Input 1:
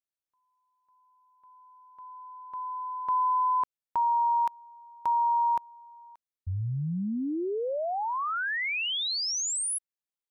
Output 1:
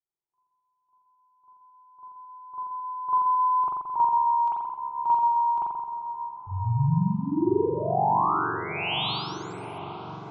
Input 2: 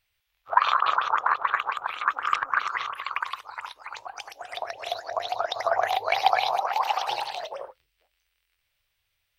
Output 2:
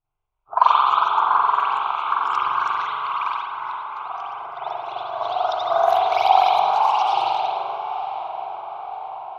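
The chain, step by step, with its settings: on a send: echo that smears into a reverb 915 ms, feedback 66%, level -11 dB; on the sum: spring tank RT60 1.3 s, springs 43 ms, chirp 75 ms, DRR -9.5 dB; level-controlled noise filter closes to 1.3 kHz, open at -10 dBFS; static phaser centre 360 Hz, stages 8; tape noise reduction on one side only decoder only; trim -1.5 dB

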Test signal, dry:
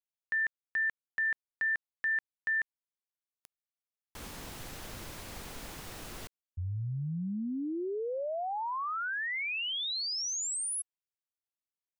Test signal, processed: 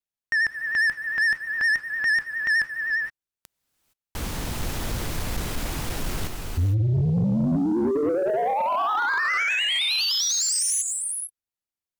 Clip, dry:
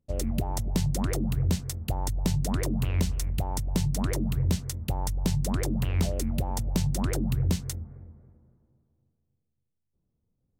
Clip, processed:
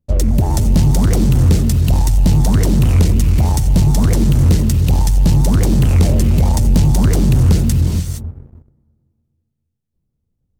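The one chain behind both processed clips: bass shelf 200 Hz +8 dB; gated-style reverb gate 490 ms rising, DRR 4.5 dB; vibrato 9.8 Hz 68 cents; waveshaping leveller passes 2; trim +3.5 dB

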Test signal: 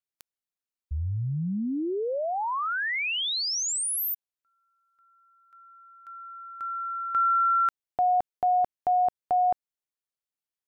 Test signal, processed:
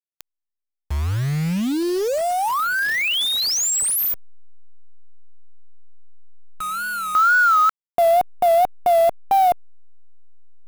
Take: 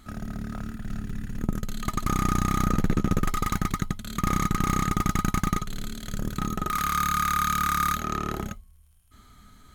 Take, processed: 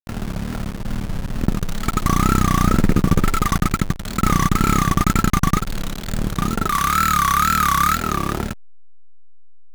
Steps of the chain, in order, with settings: send-on-delta sampling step -33.5 dBFS; wow and flutter 2.1 Hz 140 cents; trim +8 dB

